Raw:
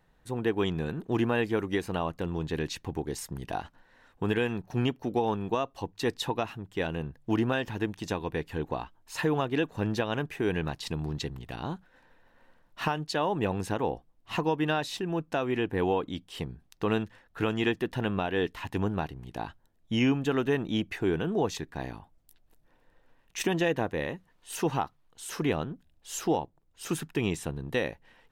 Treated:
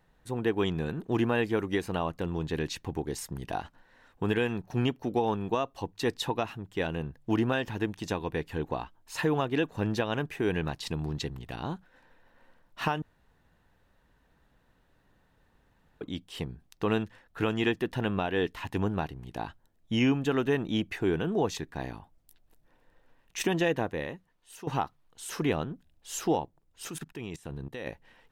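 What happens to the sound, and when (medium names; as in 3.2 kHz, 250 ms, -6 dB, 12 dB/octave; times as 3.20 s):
13.02–16.01 s: room tone
23.72–24.67 s: fade out, to -16 dB
26.89–27.87 s: level held to a coarse grid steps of 19 dB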